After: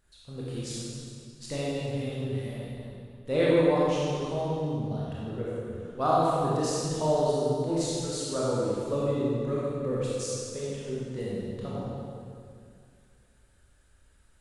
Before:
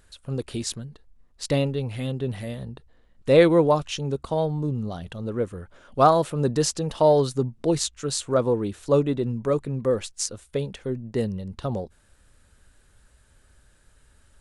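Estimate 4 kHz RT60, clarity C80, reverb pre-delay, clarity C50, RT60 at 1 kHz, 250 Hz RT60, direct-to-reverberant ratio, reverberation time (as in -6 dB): 1.9 s, -2.0 dB, 21 ms, -4.5 dB, 2.2 s, 2.4 s, -7.5 dB, 2.2 s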